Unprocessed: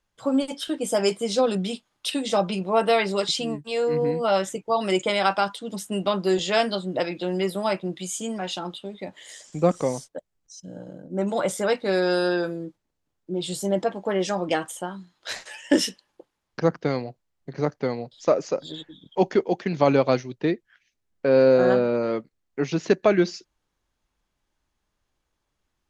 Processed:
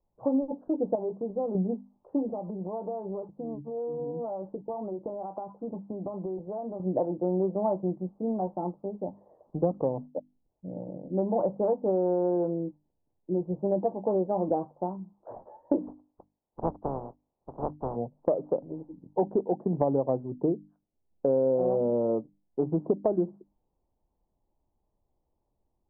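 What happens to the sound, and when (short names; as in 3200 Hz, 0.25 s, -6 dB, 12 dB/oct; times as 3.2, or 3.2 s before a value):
0.95–1.55 compressor 2.5:1, threshold -32 dBFS
2.3–6.8 compressor 16:1, threshold -31 dBFS
15.86–17.95 spectral contrast lowered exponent 0.13
whole clip: steep low-pass 930 Hz 48 dB/oct; notches 50/100/150/200/250/300 Hz; compressor 5:1, threshold -24 dBFS; gain +1.5 dB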